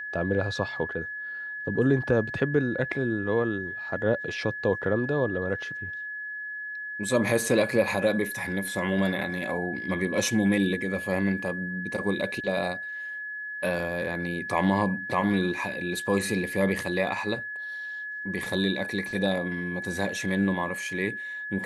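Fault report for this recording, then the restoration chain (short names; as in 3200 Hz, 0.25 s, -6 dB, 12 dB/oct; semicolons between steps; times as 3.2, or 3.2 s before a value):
tone 1700 Hz -33 dBFS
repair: notch 1700 Hz, Q 30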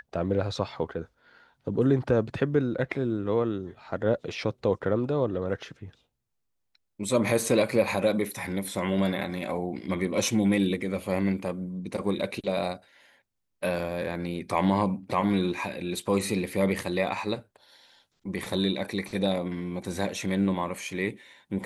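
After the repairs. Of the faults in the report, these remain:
none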